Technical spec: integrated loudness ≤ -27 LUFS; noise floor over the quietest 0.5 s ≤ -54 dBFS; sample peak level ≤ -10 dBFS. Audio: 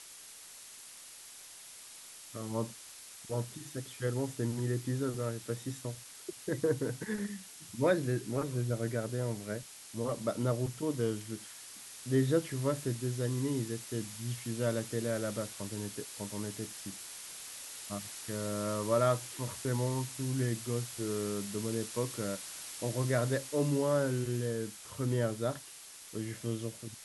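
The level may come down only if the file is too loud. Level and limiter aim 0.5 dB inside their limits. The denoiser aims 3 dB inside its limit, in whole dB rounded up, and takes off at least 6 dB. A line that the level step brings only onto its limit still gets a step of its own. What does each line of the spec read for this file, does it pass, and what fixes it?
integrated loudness -35.0 LUFS: pass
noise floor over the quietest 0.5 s -51 dBFS: fail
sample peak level -15.5 dBFS: pass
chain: noise reduction 6 dB, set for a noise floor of -51 dBFS

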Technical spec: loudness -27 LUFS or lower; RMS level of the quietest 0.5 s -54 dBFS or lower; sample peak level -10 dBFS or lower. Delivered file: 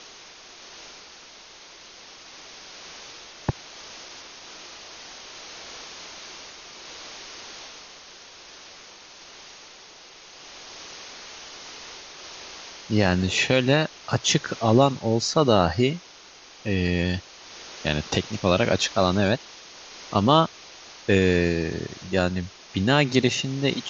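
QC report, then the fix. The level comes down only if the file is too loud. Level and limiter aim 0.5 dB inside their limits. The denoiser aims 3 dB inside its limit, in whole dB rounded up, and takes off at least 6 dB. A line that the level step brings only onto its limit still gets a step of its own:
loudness -23.0 LUFS: fail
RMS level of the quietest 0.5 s -48 dBFS: fail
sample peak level -4.0 dBFS: fail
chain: noise reduction 6 dB, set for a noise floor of -48 dBFS; trim -4.5 dB; peak limiter -10.5 dBFS

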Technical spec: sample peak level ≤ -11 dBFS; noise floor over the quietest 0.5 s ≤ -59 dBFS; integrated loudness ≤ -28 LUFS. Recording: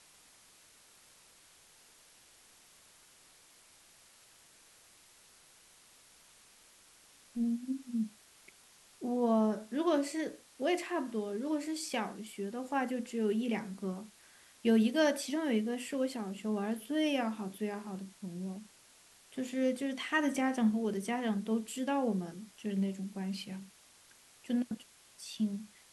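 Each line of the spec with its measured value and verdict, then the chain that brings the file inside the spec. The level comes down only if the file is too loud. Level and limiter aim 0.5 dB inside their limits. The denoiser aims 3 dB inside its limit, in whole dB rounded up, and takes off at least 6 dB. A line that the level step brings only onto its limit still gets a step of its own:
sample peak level -18.0 dBFS: pass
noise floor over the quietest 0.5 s -62 dBFS: pass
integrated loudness -34.5 LUFS: pass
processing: none needed

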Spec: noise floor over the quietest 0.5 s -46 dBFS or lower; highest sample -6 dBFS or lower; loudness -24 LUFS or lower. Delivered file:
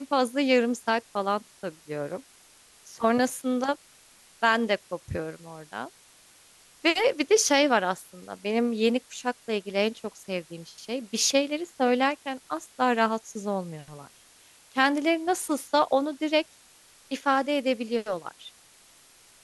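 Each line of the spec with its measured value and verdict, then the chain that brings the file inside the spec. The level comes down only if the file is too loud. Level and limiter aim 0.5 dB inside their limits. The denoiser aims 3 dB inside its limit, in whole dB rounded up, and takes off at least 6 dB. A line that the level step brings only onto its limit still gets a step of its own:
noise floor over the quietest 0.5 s -56 dBFS: pass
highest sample -7.0 dBFS: pass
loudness -26.5 LUFS: pass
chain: none needed

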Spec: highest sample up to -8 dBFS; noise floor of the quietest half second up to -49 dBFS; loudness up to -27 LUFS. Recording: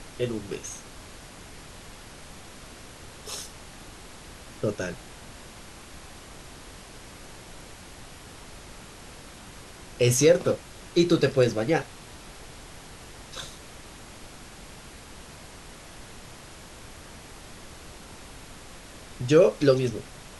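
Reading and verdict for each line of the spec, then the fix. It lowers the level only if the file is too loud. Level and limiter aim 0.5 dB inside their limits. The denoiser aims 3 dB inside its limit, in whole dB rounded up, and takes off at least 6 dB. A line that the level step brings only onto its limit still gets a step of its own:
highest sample -6.5 dBFS: fail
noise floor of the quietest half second -45 dBFS: fail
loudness -25.0 LUFS: fail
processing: noise reduction 6 dB, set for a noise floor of -45 dBFS; trim -2.5 dB

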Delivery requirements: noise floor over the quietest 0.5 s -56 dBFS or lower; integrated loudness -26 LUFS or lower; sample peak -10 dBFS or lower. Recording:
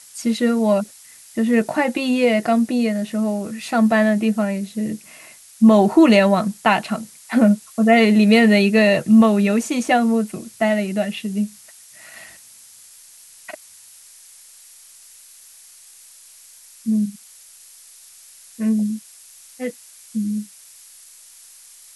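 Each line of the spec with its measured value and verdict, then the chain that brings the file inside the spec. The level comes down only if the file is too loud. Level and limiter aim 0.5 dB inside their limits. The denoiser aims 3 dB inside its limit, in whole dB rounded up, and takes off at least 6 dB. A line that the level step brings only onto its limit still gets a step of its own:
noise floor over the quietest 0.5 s -46 dBFS: fail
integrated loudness -18.0 LUFS: fail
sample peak -4.0 dBFS: fail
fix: noise reduction 6 dB, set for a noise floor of -46 dBFS; trim -8.5 dB

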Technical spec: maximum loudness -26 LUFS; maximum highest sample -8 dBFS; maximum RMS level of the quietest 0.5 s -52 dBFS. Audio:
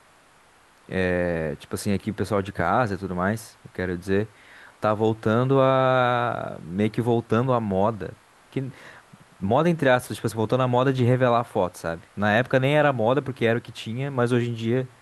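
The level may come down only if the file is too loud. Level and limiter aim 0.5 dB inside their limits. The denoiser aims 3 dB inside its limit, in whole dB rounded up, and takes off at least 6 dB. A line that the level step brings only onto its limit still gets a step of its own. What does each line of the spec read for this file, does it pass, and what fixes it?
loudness -23.5 LUFS: fail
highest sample -6.0 dBFS: fail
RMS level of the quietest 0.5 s -56 dBFS: pass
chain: trim -3 dB

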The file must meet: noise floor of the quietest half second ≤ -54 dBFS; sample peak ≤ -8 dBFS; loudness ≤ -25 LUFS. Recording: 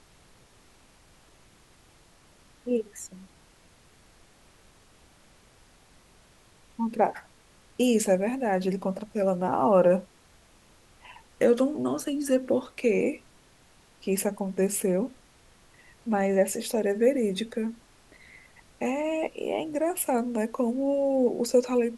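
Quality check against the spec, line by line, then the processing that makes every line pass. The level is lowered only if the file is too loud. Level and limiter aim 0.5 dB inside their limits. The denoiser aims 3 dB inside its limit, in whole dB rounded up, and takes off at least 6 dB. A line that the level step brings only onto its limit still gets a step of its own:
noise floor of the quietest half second -58 dBFS: pass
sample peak -9.0 dBFS: pass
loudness -26.5 LUFS: pass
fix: none needed

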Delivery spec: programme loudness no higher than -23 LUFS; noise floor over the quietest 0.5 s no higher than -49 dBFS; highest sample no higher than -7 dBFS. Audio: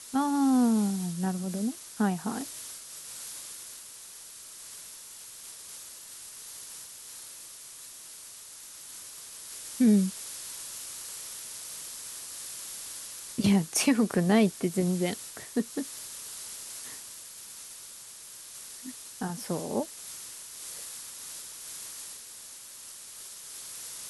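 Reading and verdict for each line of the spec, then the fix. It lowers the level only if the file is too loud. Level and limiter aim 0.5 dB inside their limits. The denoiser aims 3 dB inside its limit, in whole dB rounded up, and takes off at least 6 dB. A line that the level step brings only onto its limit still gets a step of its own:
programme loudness -32.0 LUFS: pass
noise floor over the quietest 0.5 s -47 dBFS: fail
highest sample -13.0 dBFS: pass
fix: noise reduction 6 dB, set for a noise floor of -47 dBFS

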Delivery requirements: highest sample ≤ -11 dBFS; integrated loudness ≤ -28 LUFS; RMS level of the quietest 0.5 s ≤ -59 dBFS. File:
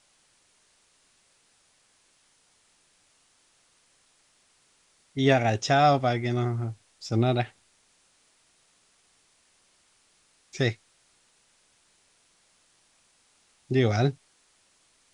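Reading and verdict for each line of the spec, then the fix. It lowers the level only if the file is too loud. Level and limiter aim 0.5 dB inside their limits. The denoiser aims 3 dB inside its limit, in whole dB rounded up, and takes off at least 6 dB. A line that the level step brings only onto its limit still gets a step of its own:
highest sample -6.5 dBFS: fail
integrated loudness -25.5 LUFS: fail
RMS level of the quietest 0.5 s -65 dBFS: pass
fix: trim -3 dB; peak limiter -11.5 dBFS

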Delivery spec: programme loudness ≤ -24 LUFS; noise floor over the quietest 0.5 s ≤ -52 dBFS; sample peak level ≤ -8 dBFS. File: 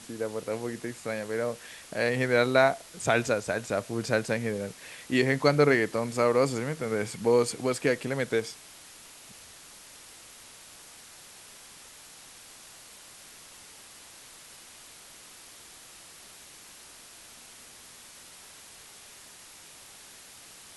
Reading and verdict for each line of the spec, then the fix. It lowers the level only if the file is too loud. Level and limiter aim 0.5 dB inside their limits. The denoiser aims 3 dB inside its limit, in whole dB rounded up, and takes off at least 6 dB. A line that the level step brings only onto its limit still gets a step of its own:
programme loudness -27.5 LUFS: pass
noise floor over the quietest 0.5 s -50 dBFS: fail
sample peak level -7.5 dBFS: fail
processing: noise reduction 6 dB, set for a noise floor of -50 dBFS; peak limiter -8.5 dBFS

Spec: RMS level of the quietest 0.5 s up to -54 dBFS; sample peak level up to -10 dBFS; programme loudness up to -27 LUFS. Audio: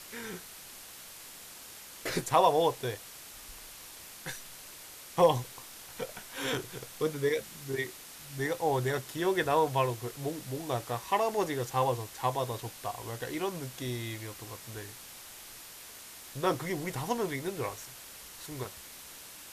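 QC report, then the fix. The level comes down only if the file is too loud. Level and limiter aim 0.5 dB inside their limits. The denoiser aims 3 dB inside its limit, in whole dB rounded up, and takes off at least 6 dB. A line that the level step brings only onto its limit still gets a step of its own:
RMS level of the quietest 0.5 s -48 dBFS: fail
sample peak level -12.0 dBFS: pass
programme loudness -32.5 LUFS: pass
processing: noise reduction 9 dB, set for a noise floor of -48 dBFS

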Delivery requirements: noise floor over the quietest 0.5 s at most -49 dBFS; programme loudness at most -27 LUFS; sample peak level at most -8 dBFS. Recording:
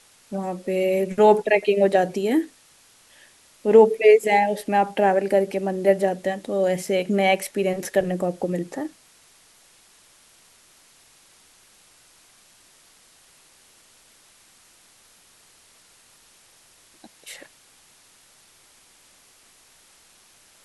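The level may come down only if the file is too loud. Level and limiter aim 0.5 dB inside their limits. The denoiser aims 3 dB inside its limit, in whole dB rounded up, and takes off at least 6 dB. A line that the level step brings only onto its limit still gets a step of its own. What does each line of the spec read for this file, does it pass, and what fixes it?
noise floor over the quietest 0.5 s -55 dBFS: pass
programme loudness -21.0 LUFS: fail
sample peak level -3.0 dBFS: fail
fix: trim -6.5 dB

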